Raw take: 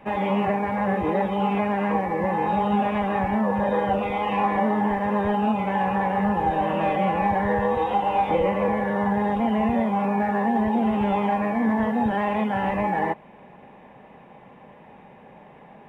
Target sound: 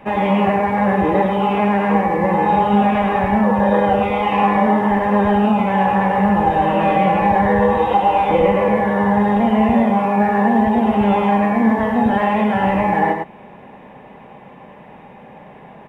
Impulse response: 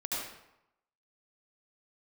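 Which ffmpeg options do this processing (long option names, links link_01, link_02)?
-af "aecho=1:1:103:0.562,volume=6dB"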